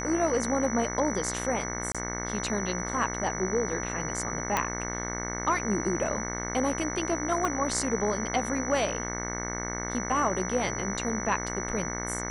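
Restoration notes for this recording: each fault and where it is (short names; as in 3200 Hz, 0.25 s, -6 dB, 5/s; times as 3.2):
buzz 60 Hz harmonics 37 -35 dBFS
tone 5900 Hz -36 dBFS
1.92–1.95 gap 26 ms
4.57 pop -10 dBFS
7.45 pop -16 dBFS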